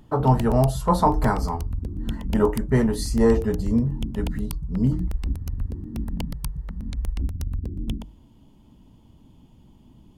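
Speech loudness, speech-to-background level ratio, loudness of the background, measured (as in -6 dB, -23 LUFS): -23.0 LUFS, 8.5 dB, -31.5 LUFS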